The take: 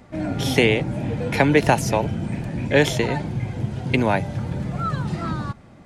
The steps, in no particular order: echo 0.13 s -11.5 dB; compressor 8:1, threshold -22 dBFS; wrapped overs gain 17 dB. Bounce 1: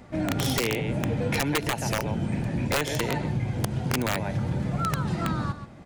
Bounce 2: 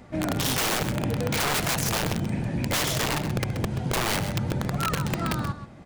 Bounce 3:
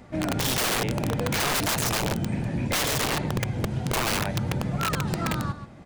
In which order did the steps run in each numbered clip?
echo > compressor > wrapped overs; wrapped overs > echo > compressor; echo > wrapped overs > compressor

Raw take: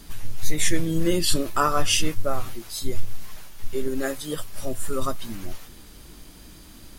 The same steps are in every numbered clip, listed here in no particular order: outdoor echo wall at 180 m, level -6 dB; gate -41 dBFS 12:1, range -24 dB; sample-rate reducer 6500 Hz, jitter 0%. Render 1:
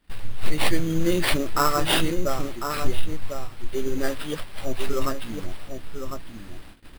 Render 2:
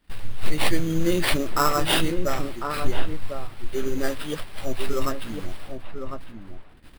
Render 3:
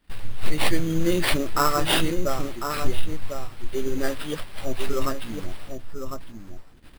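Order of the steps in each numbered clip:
outdoor echo > gate > sample-rate reducer; gate > sample-rate reducer > outdoor echo; gate > outdoor echo > sample-rate reducer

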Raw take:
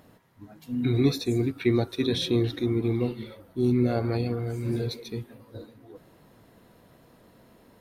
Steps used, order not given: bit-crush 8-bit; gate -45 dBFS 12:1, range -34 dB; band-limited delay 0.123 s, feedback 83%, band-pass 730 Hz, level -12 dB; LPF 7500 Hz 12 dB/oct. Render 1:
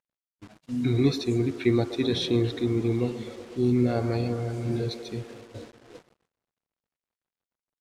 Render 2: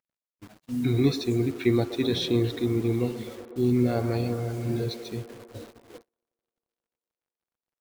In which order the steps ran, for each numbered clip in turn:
band-limited delay > bit-crush > gate > LPF; LPF > bit-crush > band-limited delay > gate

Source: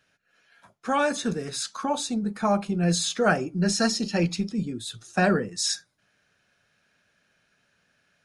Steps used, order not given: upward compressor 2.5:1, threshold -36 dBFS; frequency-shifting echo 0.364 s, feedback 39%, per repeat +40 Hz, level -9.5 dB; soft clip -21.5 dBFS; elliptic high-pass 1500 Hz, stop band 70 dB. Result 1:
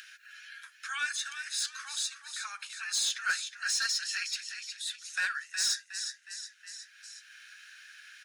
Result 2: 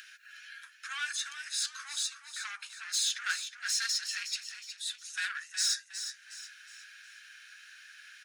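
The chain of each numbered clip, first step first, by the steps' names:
elliptic high-pass > frequency-shifting echo > soft clip > upward compressor; soft clip > upward compressor > frequency-shifting echo > elliptic high-pass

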